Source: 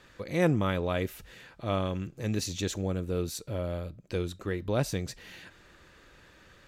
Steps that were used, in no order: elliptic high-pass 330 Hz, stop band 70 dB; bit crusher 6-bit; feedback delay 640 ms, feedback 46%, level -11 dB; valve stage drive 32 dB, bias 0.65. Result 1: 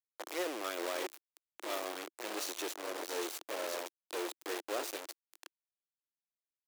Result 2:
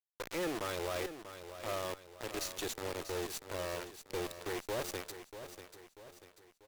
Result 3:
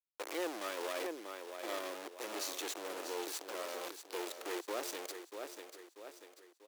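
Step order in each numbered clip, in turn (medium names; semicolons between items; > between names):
valve stage > feedback delay > bit crusher > elliptic high-pass; elliptic high-pass > bit crusher > valve stage > feedback delay; bit crusher > feedback delay > valve stage > elliptic high-pass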